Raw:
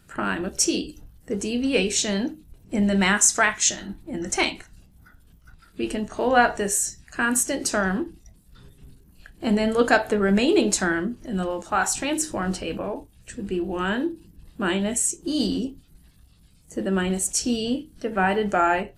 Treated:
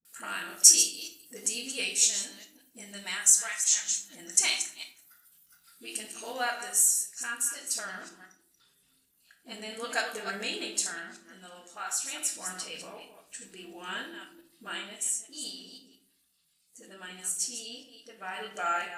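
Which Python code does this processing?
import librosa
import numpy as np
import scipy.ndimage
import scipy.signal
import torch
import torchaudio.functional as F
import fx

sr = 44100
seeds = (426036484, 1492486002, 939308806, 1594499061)

y = fx.reverse_delay(x, sr, ms=171, wet_db=-9.0)
y = np.diff(y, prepend=0.0)
y = fx.dispersion(y, sr, late='highs', ms=51.0, hz=370.0)
y = fx.rider(y, sr, range_db=5, speed_s=0.5)
y = fx.high_shelf(y, sr, hz=6800.0, db=fx.steps((0.0, 3.5), (7.25, -9.0)))
y = fx.room_shoebox(y, sr, seeds[0], volume_m3=590.0, walls='furnished', distance_m=1.7)
y = F.gain(torch.from_numpy(y), -1.5).numpy()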